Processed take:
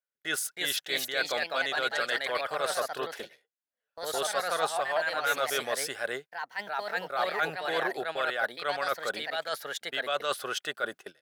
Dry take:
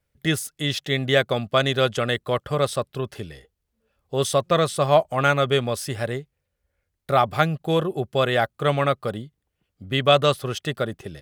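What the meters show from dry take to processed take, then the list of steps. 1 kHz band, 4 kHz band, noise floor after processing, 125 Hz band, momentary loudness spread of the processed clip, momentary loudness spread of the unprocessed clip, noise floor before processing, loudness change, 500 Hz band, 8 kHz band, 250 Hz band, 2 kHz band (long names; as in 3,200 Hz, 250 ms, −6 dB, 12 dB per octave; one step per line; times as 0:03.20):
−7.0 dB, −5.5 dB, below −85 dBFS, −28.5 dB, 6 LU, 11 LU, −78 dBFS, −8.0 dB, −10.5 dB, −1.5 dB, −17.0 dB, −1.5 dB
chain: high-pass filter 570 Hz 12 dB per octave
noise gate −42 dBFS, range −19 dB
parametric band 1,500 Hz +10.5 dB 0.21 octaves
reversed playback
downward compressor 5 to 1, threshold −28 dBFS, peak gain reduction 15 dB
reversed playback
delay with pitch and tempo change per echo 346 ms, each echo +2 semitones, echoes 2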